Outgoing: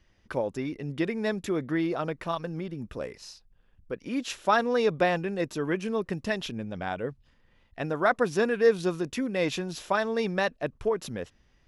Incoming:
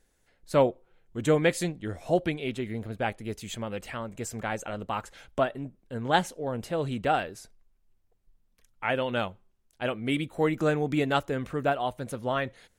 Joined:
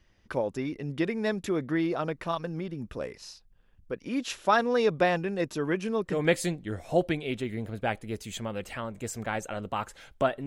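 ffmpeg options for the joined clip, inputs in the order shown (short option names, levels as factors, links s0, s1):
-filter_complex "[0:a]apad=whole_dur=10.46,atrim=end=10.46,atrim=end=6.26,asetpts=PTS-STARTPTS[s0];[1:a]atrim=start=1.25:end=5.63,asetpts=PTS-STARTPTS[s1];[s0][s1]acrossfade=d=0.18:c1=tri:c2=tri"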